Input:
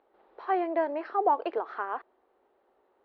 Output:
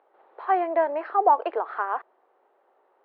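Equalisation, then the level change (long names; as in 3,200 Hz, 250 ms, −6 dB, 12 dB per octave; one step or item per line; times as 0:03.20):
high-pass filter 660 Hz 12 dB per octave
high-frequency loss of the air 200 metres
spectral tilt −2 dB per octave
+8.0 dB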